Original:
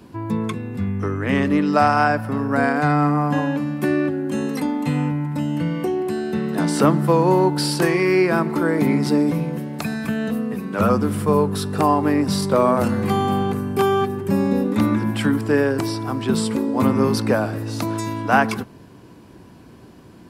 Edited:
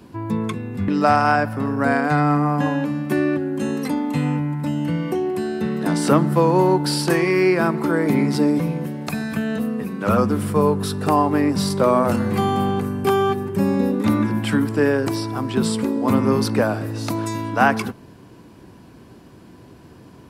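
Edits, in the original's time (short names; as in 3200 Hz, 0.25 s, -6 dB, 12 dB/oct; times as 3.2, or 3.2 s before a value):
0.88–1.6 cut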